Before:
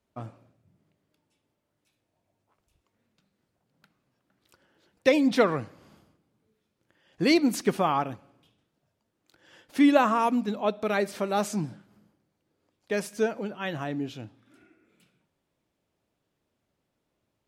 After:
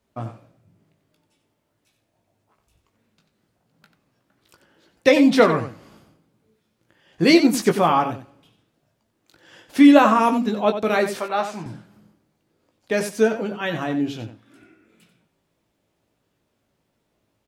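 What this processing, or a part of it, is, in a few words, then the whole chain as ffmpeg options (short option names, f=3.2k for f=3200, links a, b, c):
slapback doubling: -filter_complex "[0:a]asettb=1/sr,asplit=3[a][b][c];[a]atrim=end=11.194[d];[b]atrim=start=11.19:end=11.66,asetpts=PTS-STARTPTS,afade=t=in:d=0.004:c=qsin,afade=t=out:st=0.466:d=0.004:c=qsin,acrossover=split=550 3800:gain=0.224 1 0.141[e][f][g];[e][f][g]amix=inputs=3:normalize=0[h];[c]atrim=start=11.656[i];[d][h]acrossfade=d=0.004:c1=hsin:c2=qsin[j];[j][i]acrossfade=d=0.004:c1=qsin:c2=hsin,asplit=3[k][l][m];[l]adelay=18,volume=-6.5dB[n];[m]adelay=91,volume=-10dB[o];[k][n][o]amix=inputs=3:normalize=0,volume=6dB"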